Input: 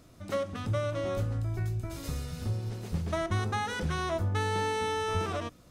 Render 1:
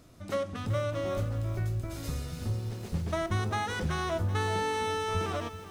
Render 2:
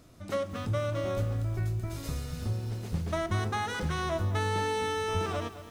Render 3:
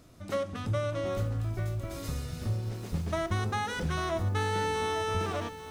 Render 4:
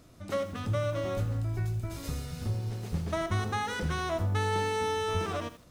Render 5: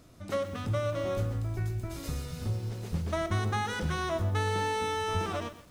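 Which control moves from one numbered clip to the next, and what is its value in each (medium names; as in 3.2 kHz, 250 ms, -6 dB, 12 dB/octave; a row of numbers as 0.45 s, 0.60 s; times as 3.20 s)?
bit-crushed delay, time: 382 ms, 216 ms, 845 ms, 80 ms, 124 ms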